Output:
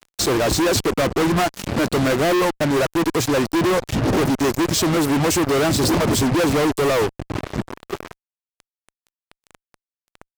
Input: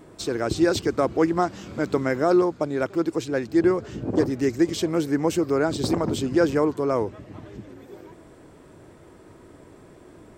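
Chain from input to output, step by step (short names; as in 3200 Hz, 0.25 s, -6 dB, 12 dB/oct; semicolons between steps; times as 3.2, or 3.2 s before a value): reverb removal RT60 0.67 s; dynamic EQ 3000 Hz, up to -8 dB, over -51 dBFS, Q 1.8; fuzz box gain 44 dB, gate -40 dBFS; gain -3 dB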